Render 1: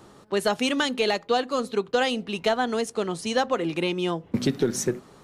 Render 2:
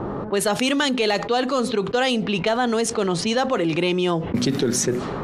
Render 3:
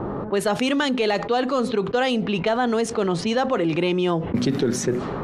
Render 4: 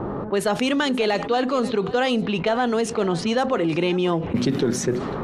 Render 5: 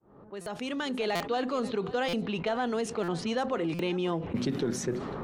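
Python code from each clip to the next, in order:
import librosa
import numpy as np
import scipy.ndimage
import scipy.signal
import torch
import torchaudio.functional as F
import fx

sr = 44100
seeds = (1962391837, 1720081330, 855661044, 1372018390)

y1 = fx.env_lowpass(x, sr, base_hz=960.0, full_db=-21.0)
y1 = fx.env_flatten(y1, sr, amount_pct=70)
y2 = fx.high_shelf(y1, sr, hz=3800.0, db=-9.0)
y3 = y2 + 10.0 ** (-17.0 / 20.0) * np.pad(y2, (int(533 * sr / 1000.0), 0))[:len(y2)]
y4 = fx.fade_in_head(y3, sr, length_s=1.13)
y4 = fx.buffer_glitch(y4, sr, at_s=(0.41, 1.15, 2.08, 3.03, 3.74), block=256, repeats=8)
y4 = y4 * 10.0 ** (-8.5 / 20.0)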